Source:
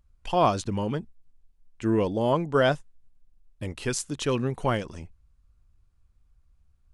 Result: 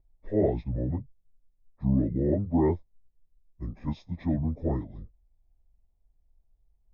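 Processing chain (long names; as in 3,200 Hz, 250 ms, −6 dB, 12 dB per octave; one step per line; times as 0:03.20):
phase-vocoder pitch shift without resampling −9 semitones
moving average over 30 samples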